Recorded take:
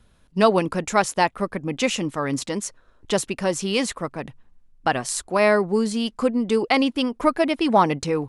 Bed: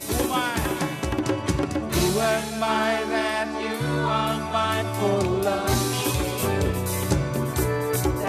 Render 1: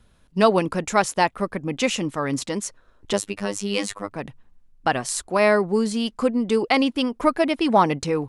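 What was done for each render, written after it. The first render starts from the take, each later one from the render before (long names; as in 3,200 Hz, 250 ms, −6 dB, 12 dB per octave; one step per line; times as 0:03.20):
0:03.13–0:04.11: phases set to zero 101 Hz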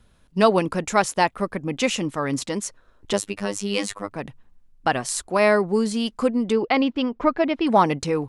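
0:06.52–0:07.67: high-frequency loss of the air 180 metres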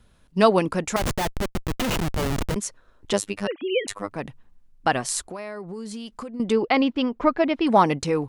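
0:00.96–0:02.56: comparator with hysteresis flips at −23 dBFS
0:03.47–0:03.88: three sine waves on the formant tracks
0:05.27–0:06.40: downward compressor 10 to 1, threshold −31 dBFS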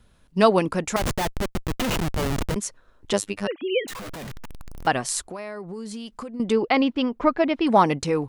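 0:03.88–0:04.87: sign of each sample alone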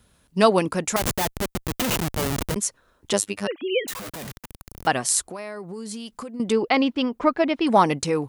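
high-pass filter 65 Hz 6 dB per octave
high-shelf EQ 6,800 Hz +10 dB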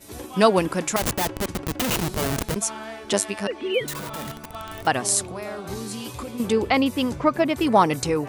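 mix in bed −13 dB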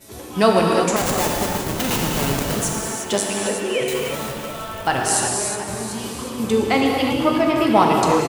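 on a send: echo with shifted repeats 360 ms, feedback 47%, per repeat +47 Hz, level −10.5 dB
on the sum: reverb whose tail is shaped and stops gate 380 ms flat, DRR −1 dB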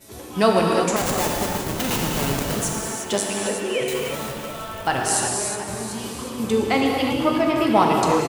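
level −2 dB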